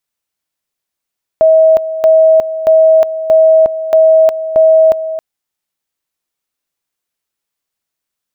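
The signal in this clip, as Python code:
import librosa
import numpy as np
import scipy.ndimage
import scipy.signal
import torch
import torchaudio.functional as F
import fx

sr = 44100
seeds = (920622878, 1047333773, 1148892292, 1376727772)

y = fx.two_level_tone(sr, hz=640.0, level_db=-3.5, drop_db=12.5, high_s=0.36, low_s=0.27, rounds=6)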